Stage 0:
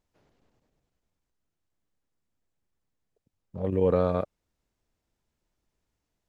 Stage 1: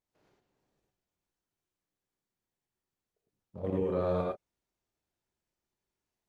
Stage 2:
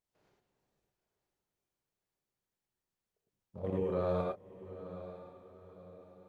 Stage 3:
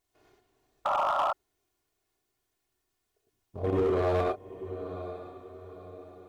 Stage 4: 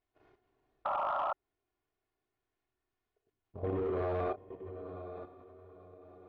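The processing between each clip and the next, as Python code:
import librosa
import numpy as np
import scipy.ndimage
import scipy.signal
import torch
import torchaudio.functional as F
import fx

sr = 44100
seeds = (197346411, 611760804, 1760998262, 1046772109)

y1 = fx.low_shelf(x, sr, hz=88.0, db=-9.5)
y1 = fx.level_steps(y1, sr, step_db=10)
y1 = fx.rev_gated(y1, sr, seeds[0], gate_ms=130, shape='rising', drr_db=-2.0)
y1 = F.gain(torch.from_numpy(y1), -3.0).numpy()
y2 = fx.peak_eq(y1, sr, hz=290.0, db=-4.0, octaves=0.41)
y2 = fx.echo_diffused(y2, sr, ms=900, feedback_pct=42, wet_db=-13.0)
y2 = F.gain(torch.from_numpy(y2), -2.0).numpy()
y3 = y2 + 0.71 * np.pad(y2, (int(2.8 * sr / 1000.0), 0))[:len(y2)]
y3 = fx.spec_paint(y3, sr, seeds[1], shape='noise', start_s=0.85, length_s=0.48, low_hz=550.0, high_hz=1400.0, level_db=-34.0)
y3 = np.clip(y3, -10.0 ** (-30.0 / 20.0), 10.0 ** (-30.0 / 20.0))
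y3 = F.gain(torch.from_numpy(y3), 8.0).numpy()
y4 = scipy.signal.sosfilt(scipy.signal.butter(2, 2500.0, 'lowpass', fs=sr, output='sos'), y3)
y4 = fx.level_steps(y4, sr, step_db=11)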